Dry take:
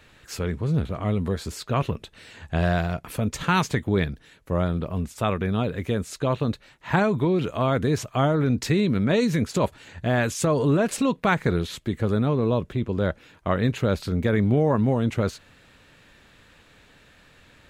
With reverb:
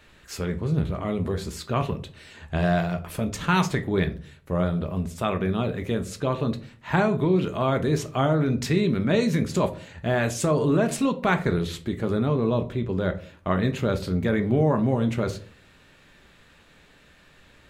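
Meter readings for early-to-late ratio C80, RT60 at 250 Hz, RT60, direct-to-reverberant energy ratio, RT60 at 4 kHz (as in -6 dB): 20.0 dB, 0.55 s, 0.45 s, 7.0 dB, 0.30 s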